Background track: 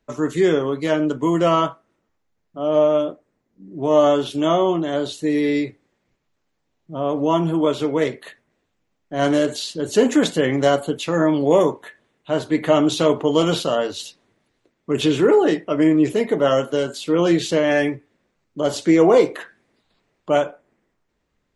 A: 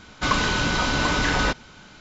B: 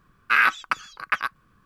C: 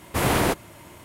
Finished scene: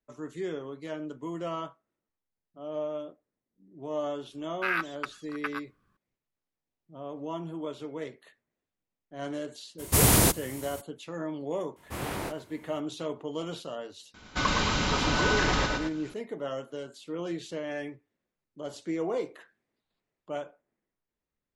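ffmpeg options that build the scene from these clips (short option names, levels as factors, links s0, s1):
-filter_complex "[3:a]asplit=2[s0][s1];[0:a]volume=0.133[s2];[s0]bass=f=250:g=8,treble=f=4000:g=15[s3];[s1]flanger=delay=20:depth=5.6:speed=2.6[s4];[1:a]aecho=1:1:113.7|221.6:0.631|0.316[s5];[2:a]atrim=end=1.65,asetpts=PTS-STARTPTS,volume=0.282,afade=t=in:d=0.004:c=hsin,afade=t=out:st=1.646:d=0.004:c=hsin,adelay=4320[s6];[s3]atrim=end=1.04,asetpts=PTS-STARTPTS,volume=0.562,afade=t=in:d=0.02,afade=t=out:st=1.02:d=0.02,adelay=431298S[s7];[s4]atrim=end=1.04,asetpts=PTS-STARTPTS,volume=0.316,afade=t=in:d=0.004:c=hsin,afade=t=out:st=1.036:d=0.004:c=hsin,adelay=11760[s8];[s5]atrim=end=2,asetpts=PTS-STARTPTS,volume=0.531,afade=t=in:d=0.004:c=hsin,afade=t=out:st=1.996:d=0.004:c=hsin,adelay=14140[s9];[s2][s6][s7][s8][s9]amix=inputs=5:normalize=0"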